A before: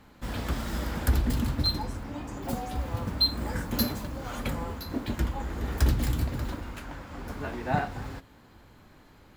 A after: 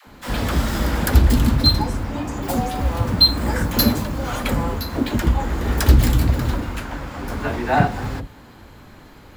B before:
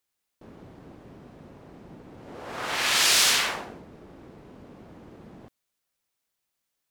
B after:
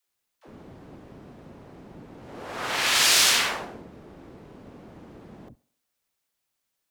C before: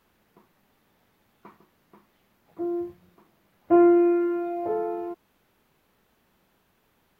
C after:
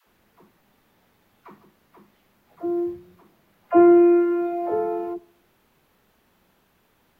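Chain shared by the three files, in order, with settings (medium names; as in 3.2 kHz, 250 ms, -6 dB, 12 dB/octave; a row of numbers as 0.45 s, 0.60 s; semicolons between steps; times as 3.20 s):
phase dispersion lows, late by 70 ms, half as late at 400 Hz; tape echo 67 ms, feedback 53%, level -22 dB; normalise loudness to -20 LUFS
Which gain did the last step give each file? +10.5 dB, +1.0 dB, +3.5 dB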